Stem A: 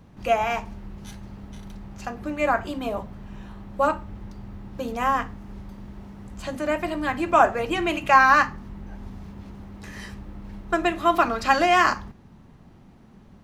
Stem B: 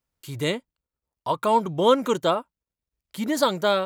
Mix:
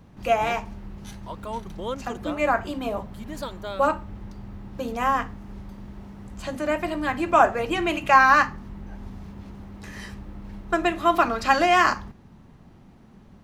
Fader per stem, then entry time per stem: 0.0, -13.0 dB; 0.00, 0.00 s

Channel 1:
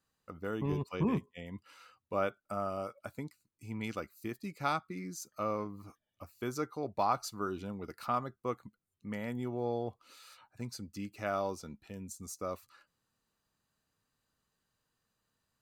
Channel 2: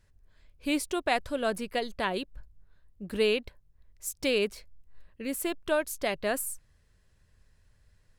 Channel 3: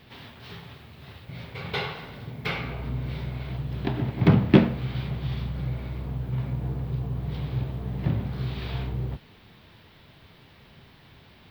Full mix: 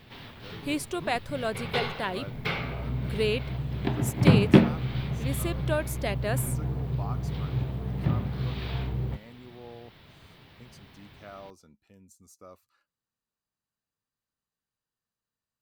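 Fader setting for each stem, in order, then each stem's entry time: -11.0, -1.5, -0.5 dB; 0.00, 0.00, 0.00 s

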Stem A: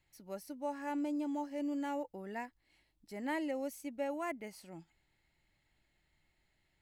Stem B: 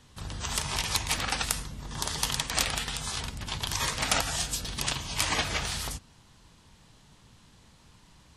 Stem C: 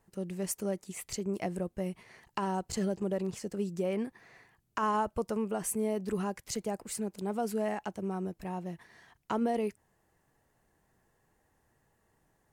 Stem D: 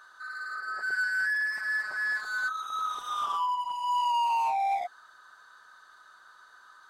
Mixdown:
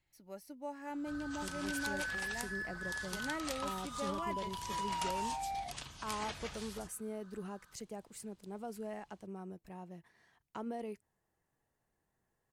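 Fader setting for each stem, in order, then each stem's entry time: -4.5, -16.0, -11.0, -12.0 dB; 0.00, 0.90, 1.25, 0.85 s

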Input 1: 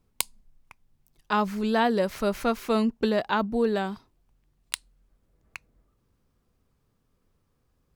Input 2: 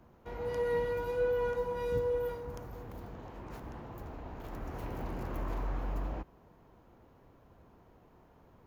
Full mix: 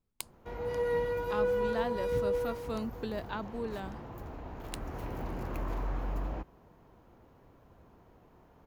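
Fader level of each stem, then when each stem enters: -13.0, +1.0 dB; 0.00, 0.20 s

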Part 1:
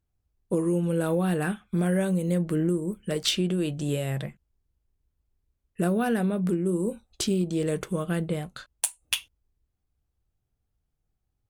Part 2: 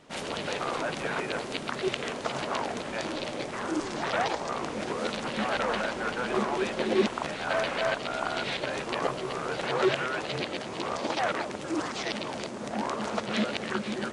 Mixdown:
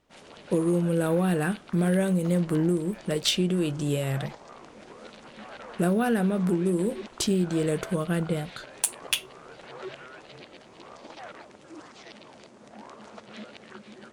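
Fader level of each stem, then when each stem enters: +1.0, -14.5 dB; 0.00, 0.00 s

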